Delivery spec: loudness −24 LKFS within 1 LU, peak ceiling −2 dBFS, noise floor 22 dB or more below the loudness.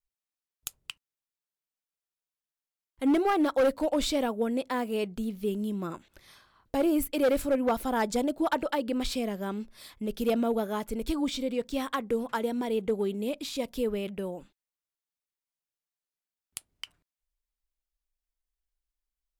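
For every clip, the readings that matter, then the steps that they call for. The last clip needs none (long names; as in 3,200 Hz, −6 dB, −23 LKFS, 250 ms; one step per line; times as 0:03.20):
share of clipped samples 0.8%; peaks flattened at −19.5 dBFS; integrated loudness −29.5 LKFS; sample peak −19.5 dBFS; target loudness −24.0 LKFS
→ clipped peaks rebuilt −19.5 dBFS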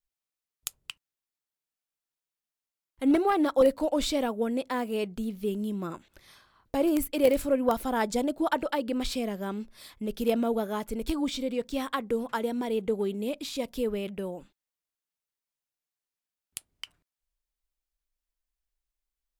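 share of clipped samples 0.0%; integrated loudness −29.0 LKFS; sample peak −10.5 dBFS; target loudness −24.0 LKFS
→ level +5 dB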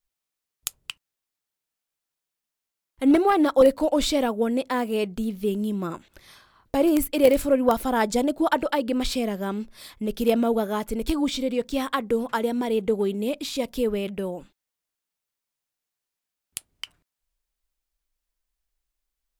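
integrated loudness −24.0 LKFS; sample peak −5.5 dBFS; background noise floor −86 dBFS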